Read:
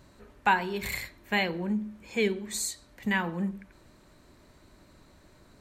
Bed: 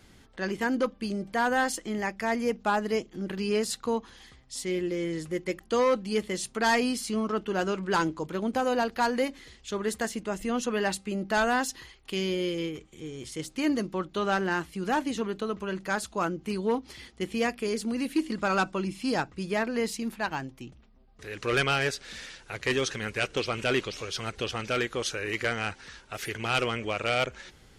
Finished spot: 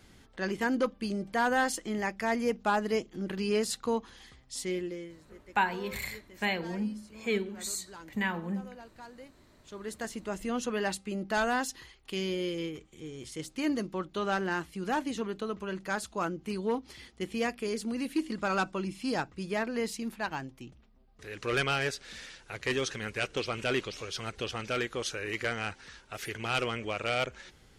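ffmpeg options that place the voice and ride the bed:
ffmpeg -i stem1.wav -i stem2.wav -filter_complex "[0:a]adelay=5100,volume=-3.5dB[link_01];[1:a]volume=17.5dB,afade=type=out:start_time=4.62:duration=0.54:silence=0.0891251,afade=type=in:start_time=9.52:duration=0.81:silence=0.112202[link_02];[link_01][link_02]amix=inputs=2:normalize=0" out.wav

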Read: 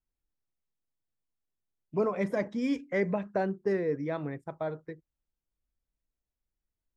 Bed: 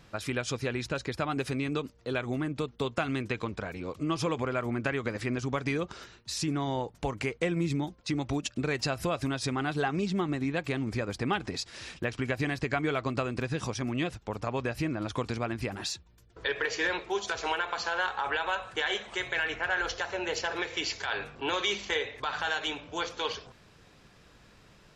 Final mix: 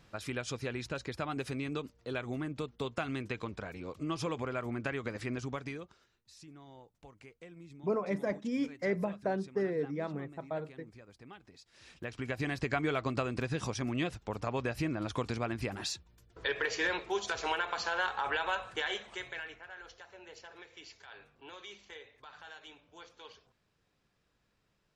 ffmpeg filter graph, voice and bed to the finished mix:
ffmpeg -i stem1.wav -i stem2.wav -filter_complex "[0:a]adelay=5900,volume=-3.5dB[link_01];[1:a]volume=14.5dB,afade=type=out:start_time=5.4:duration=0.58:silence=0.141254,afade=type=in:start_time=11.66:duration=1:silence=0.1,afade=type=out:start_time=18.57:duration=1.07:silence=0.141254[link_02];[link_01][link_02]amix=inputs=2:normalize=0" out.wav

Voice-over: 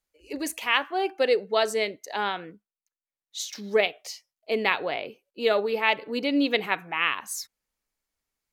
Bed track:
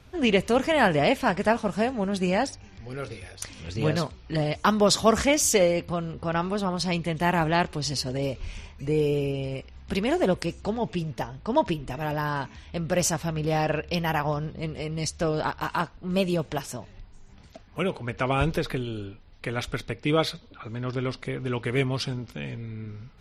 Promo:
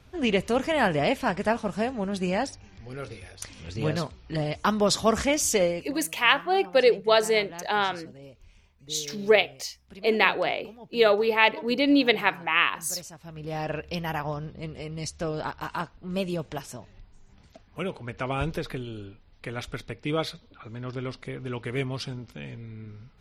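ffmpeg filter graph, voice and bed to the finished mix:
ffmpeg -i stem1.wav -i stem2.wav -filter_complex "[0:a]adelay=5550,volume=3dB[link_01];[1:a]volume=11.5dB,afade=type=out:start_time=5.65:duration=0.27:silence=0.158489,afade=type=in:start_time=13.18:duration=0.57:silence=0.199526[link_02];[link_01][link_02]amix=inputs=2:normalize=0" out.wav

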